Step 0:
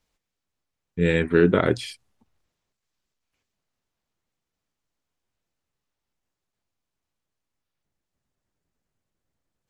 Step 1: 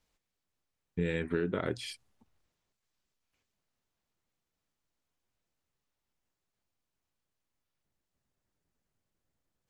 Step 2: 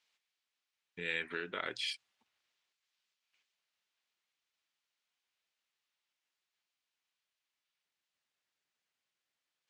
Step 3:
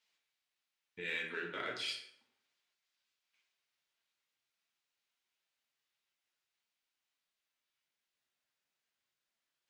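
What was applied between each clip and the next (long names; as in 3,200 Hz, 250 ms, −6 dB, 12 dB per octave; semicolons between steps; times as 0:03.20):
downward compressor 6 to 1, threshold −26 dBFS, peak gain reduction 13.5 dB; level −2.5 dB
resonant band-pass 3,000 Hz, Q 1; level +6 dB
in parallel at −10 dB: hard clipping −33 dBFS, distortion −10 dB; on the sum: flanger 1.5 Hz, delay 4.2 ms, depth 4.9 ms, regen +44%; dense smooth reverb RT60 0.74 s, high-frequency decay 0.65×, DRR 1 dB; level −1.5 dB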